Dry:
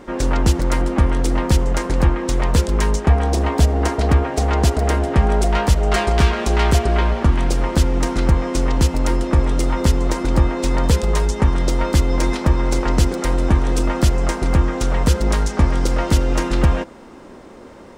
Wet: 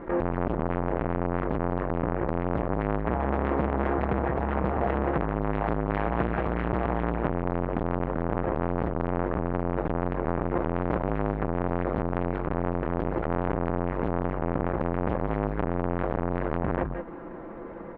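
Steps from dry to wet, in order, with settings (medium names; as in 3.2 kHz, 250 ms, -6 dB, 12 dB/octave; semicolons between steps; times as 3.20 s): low-pass 1.9 kHz 24 dB/octave; comb 6 ms, depth 50%; peak limiter -11.5 dBFS, peak gain reduction 9 dB; delay 176 ms -8 dB; transformer saturation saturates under 810 Hz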